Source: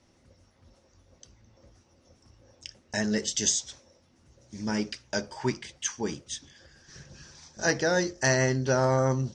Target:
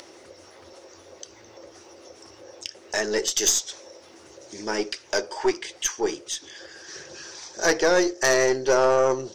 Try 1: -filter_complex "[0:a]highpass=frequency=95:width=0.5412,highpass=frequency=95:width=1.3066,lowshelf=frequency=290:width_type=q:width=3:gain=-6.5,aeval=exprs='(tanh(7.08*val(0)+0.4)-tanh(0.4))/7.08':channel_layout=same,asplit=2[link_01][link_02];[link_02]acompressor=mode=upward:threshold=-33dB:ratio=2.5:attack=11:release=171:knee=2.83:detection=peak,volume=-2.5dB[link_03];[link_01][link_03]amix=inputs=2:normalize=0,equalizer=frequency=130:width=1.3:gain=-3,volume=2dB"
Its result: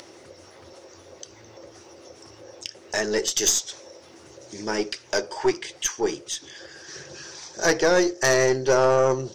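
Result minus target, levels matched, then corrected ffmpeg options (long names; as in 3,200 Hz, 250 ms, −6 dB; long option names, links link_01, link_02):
125 Hz band +7.5 dB
-filter_complex "[0:a]highpass=frequency=95:width=0.5412,highpass=frequency=95:width=1.3066,lowshelf=frequency=290:width_type=q:width=3:gain=-6.5,aeval=exprs='(tanh(7.08*val(0)+0.4)-tanh(0.4))/7.08':channel_layout=same,asplit=2[link_01][link_02];[link_02]acompressor=mode=upward:threshold=-33dB:ratio=2.5:attack=11:release=171:knee=2.83:detection=peak,volume=-2.5dB[link_03];[link_01][link_03]amix=inputs=2:normalize=0,equalizer=frequency=130:width=1.3:gain=-11.5,volume=2dB"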